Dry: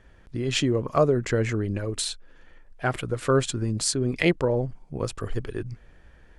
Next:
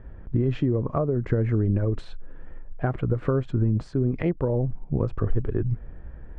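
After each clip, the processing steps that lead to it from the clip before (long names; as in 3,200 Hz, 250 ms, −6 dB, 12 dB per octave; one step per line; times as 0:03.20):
downward compressor 5 to 1, threshold −30 dBFS, peak gain reduction 14 dB
low-pass filter 1,300 Hz 12 dB per octave
low-shelf EQ 290 Hz +9 dB
level +4.5 dB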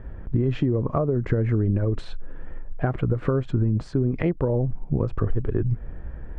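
downward compressor 2 to 1, threshold −26 dBFS, peak gain reduction 6 dB
level +5 dB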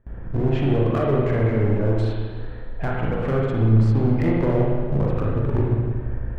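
noise gate with hold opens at −29 dBFS
gain into a clipping stage and back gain 20 dB
spring reverb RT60 1.7 s, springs 36/57 ms, chirp 45 ms, DRR −4 dB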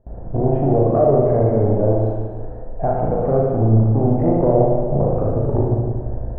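low-pass with resonance 690 Hz, resonance Q 3.6
level +1.5 dB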